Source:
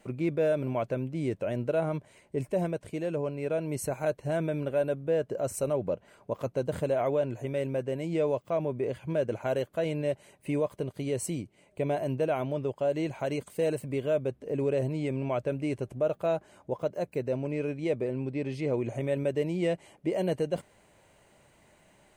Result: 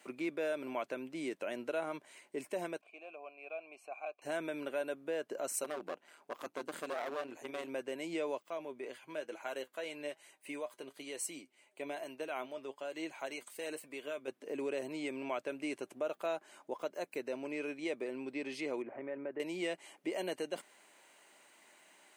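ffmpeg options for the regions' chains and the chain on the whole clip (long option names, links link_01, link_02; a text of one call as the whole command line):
ffmpeg -i in.wav -filter_complex "[0:a]asettb=1/sr,asplit=3[link_01][link_02][link_03];[link_01]atrim=end=2.814[link_04];[link_02]atrim=start=2.81:end=4.22,asetpts=PTS-STARTPTS,afade=type=in:duration=0.004:curve=qsin,afade=type=out:start_time=1.406:duration=0.004:curve=qsin,asplit=3[link_05][link_06][link_07];[link_05]bandpass=frequency=730:width_type=q:width=8,volume=0dB[link_08];[link_06]bandpass=frequency=1090:width_type=q:width=8,volume=-6dB[link_09];[link_07]bandpass=frequency=2440:width_type=q:width=8,volume=-9dB[link_10];[link_08][link_09][link_10]amix=inputs=3:normalize=0,equalizer=frequency=2400:width_type=o:width=0.23:gain=10.5[link_11];[link_03]atrim=start=4.216[link_12];[link_04][link_11]acrossfade=duration=0.004:curve1=hsin:curve2=qsin[link_13];[link_13][link_12]acrossfade=duration=0.004:curve1=qsin:curve2=hsin,asettb=1/sr,asplit=3[link_14][link_15][link_16];[link_14]atrim=end=5.644[link_17];[link_15]atrim=start=5.64:end=7.69,asetpts=PTS-STARTPTS,afade=type=in:duration=0.004:curve=qsin,afade=type=out:start_time=2.046:duration=0.004:curve=qsin,aeval=exprs='clip(val(0),-1,0.0376)':channel_layout=same,tremolo=f=160:d=0.667[link_18];[link_16]atrim=start=7.686[link_19];[link_17][link_18]acrossfade=duration=0.004:curve1=hsin:curve2=qsin[link_20];[link_20][link_19]acrossfade=duration=0.004:curve1=qsin:curve2=hsin,asettb=1/sr,asplit=3[link_21][link_22][link_23];[link_21]atrim=end=8.434[link_24];[link_22]atrim=start=8.43:end=14.28,asetpts=PTS-STARTPTS,afade=type=in:duration=0.004:curve=qsin,afade=type=out:start_time=5.846:duration=0.004:curve=qsin,lowshelf=frequency=360:gain=-5.5,flanger=delay=6:depth=2.2:regen=59:speed=1.1:shape=sinusoidal[link_25];[link_23]atrim=start=14.276[link_26];[link_24][link_25]acrossfade=duration=0.004:curve1=hsin:curve2=qsin[link_27];[link_27][link_26]acrossfade=duration=0.004:curve1=qsin:curve2=hsin,asettb=1/sr,asplit=3[link_28][link_29][link_30];[link_28]atrim=end=18.824[link_31];[link_29]atrim=start=18.82:end=19.4,asetpts=PTS-STARTPTS,afade=type=in:duration=0.004:curve=qsin,afade=type=out:start_time=0.576:duration=0.004:curve=qsin,lowpass=frequency=1800:width=0.5412,lowpass=frequency=1800:width=1.3066,acompressor=threshold=-36dB:ratio=1.5:attack=3.2:release=140:knee=1:detection=peak[link_32];[link_30]atrim=start=19.396[link_33];[link_31][link_32]acrossfade=duration=0.004:curve1=hsin:curve2=qsin[link_34];[link_34][link_33]acrossfade=duration=0.004:curve1=qsin:curve2=hsin,highpass=frequency=310:width=0.5412,highpass=frequency=310:width=1.3066,equalizer=frequency=500:width_type=o:width=1.4:gain=-10.5,acompressor=threshold=-41dB:ratio=1.5,volume=3dB" out.wav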